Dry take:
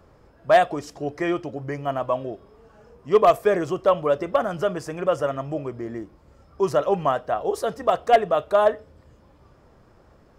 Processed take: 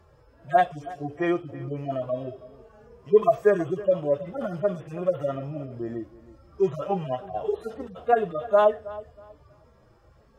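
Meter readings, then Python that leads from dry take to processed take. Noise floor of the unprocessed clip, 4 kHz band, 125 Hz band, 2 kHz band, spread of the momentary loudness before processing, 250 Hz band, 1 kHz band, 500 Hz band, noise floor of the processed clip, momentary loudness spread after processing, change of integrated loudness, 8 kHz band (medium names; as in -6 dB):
-55 dBFS, under -10 dB, -0.5 dB, -5.0 dB, 14 LU, -1.5 dB, -4.5 dB, -3.0 dB, -58 dBFS, 15 LU, -3.5 dB, no reading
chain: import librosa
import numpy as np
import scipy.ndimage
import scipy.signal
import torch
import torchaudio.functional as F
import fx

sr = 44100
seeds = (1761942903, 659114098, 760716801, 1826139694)

y = fx.hpss_only(x, sr, part='harmonic')
y = fx.echo_filtered(y, sr, ms=320, feedback_pct=25, hz=3800.0, wet_db=-18.0)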